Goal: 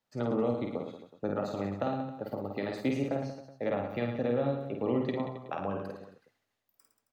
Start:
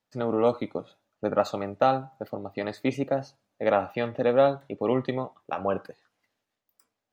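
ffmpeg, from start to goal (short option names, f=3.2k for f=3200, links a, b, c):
-filter_complex "[0:a]acrossover=split=310[a][b];[b]acompressor=threshold=-31dB:ratio=6[c];[a][c]amix=inputs=2:normalize=0,aecho=1:1:50|110|182|268.4|372.1:0.631|0.398|0.251|0.158|0.1,volume=-2.5dB"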